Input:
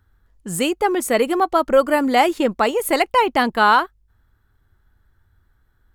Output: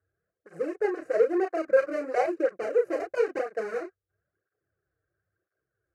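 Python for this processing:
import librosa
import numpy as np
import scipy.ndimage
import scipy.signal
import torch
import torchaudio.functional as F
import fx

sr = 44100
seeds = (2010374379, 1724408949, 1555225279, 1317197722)

y = scipy.signal.medfilt(x, 41)
y = fx.bandpass_edges(y, sr, low_hz=260.0, high_hz=7800.0)
y = fx.high_shelf(y, sr, hz=2400.0, db=-9.0)
y = fx.fixed_phaser(y, sr, hz=910.0, stages=6)
y = fx.doubler(y, sr, ms=31.0, db=-4.5)
y = fx.small_body(y, sr, hz=(1600.0, 3000.0), ring_ms=45, db=7)
y = fx.flanger_cancel(y, sr, hz=1.0, depth_ms=5.8)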